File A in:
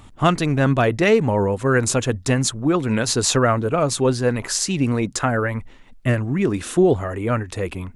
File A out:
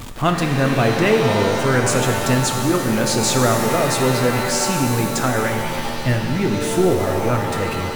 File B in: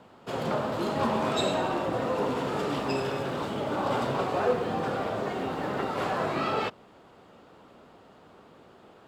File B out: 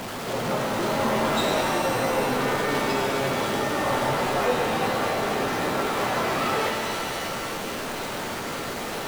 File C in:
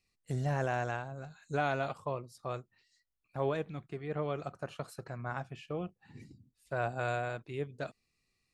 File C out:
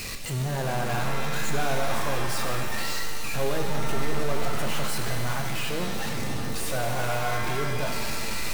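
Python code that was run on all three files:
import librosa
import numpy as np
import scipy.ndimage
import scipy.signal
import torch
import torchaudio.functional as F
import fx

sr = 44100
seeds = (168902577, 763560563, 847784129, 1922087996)

y = x + 0.5 * 10.0 ** (-26.0 / 20.0) * np.sign(x)
y = fx.rev_shimmer(y, sr, seeds[0], rt60_s=2.2, semitones=7, shimmer_db=-2, drr_db=4.0)
y = F.gain(torch.from_numpy(y), -2.5).numpy()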